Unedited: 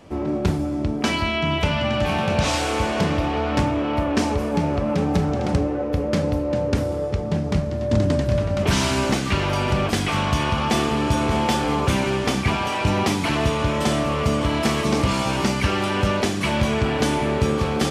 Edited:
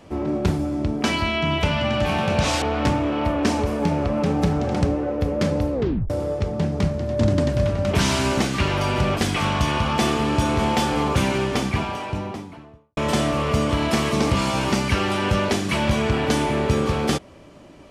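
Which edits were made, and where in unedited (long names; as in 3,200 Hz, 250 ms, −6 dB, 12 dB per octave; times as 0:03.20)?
0:02.62–0:03.34: remove
0:06.45: tape stop 0.37 s
0:12.01–0:13.69: fade out and dull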